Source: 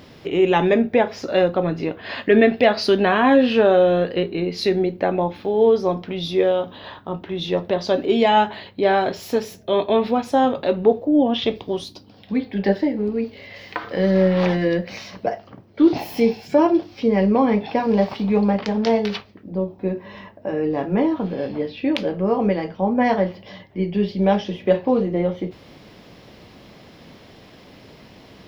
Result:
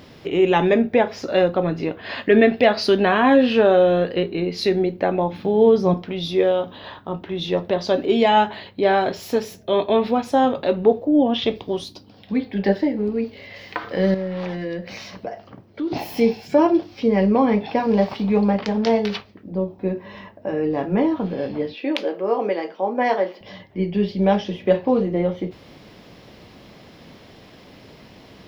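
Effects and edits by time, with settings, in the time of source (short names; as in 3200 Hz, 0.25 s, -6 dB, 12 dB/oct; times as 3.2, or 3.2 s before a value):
5.32–5.94 bell 160 Hz +12.5 dB
14.14–15.92 compressor 2:1, threshold -31 dBFS
21.74–23.41 HPF 300 Hz 24 dB/oct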